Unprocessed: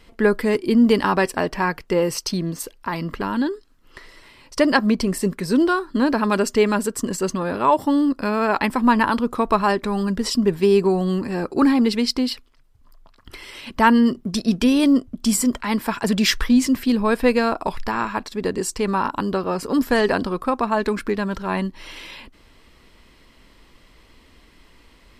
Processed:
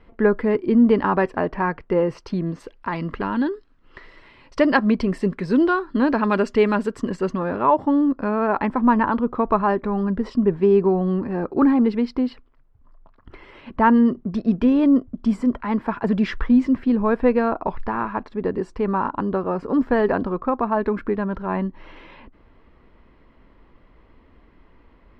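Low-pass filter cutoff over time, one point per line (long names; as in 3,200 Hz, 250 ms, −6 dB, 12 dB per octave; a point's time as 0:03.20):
0:02.22 1,600 Hz
0:02.92 2,700 Hz
0:06.94 2,700 Hz
0:07.97 1,400 Hz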